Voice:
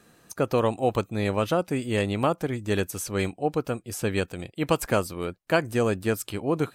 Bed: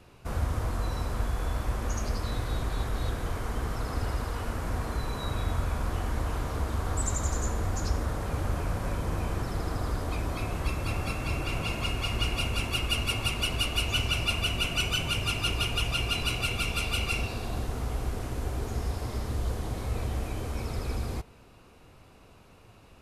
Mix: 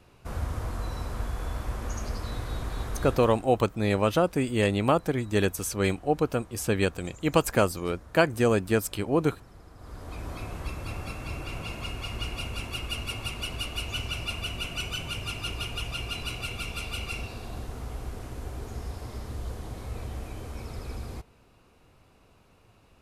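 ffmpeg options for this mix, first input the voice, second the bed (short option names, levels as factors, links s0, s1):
-filter_complex "[0:a]adelay=2650,volume=1.12[s0];[1:a]volume=3.76,afade=t=out:st=3.04:d=0.44:silence=0.149624,afade=t=in:st=9.76:d=0.55:silence=0.199526[s1];[s0][s1]amix=inputs=2:normalize=0"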